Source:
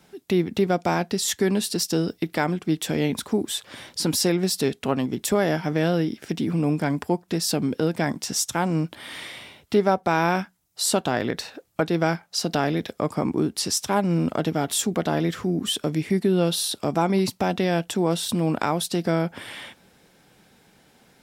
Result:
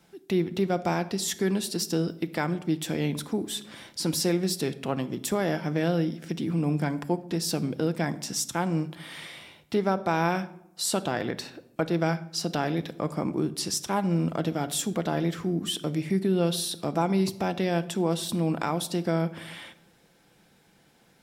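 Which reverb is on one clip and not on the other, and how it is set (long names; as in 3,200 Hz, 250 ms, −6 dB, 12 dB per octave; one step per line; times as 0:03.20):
rectangular room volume 2,300 cubic metres, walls furnished, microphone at 0.76 metres
level −5 dB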